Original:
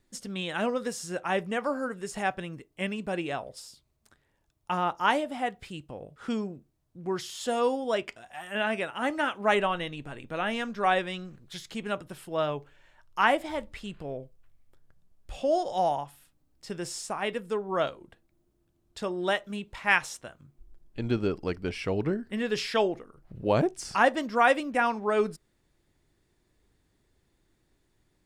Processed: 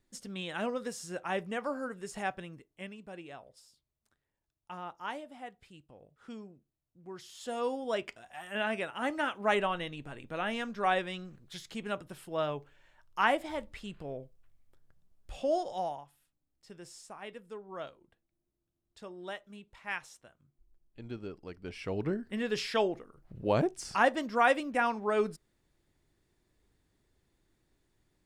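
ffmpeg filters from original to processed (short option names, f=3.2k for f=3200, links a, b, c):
-af "volume=15.5dB,afade=t=out:st=2.25:d=0.72:silence=0.354813,afade=t=in:st=7.13:d=0.91:silence=0.298538,afade=t=out:st=15.52:d=0.5:silence=0.316228,afade=t=in:st=21.53:d=0.62:silence=0.298538"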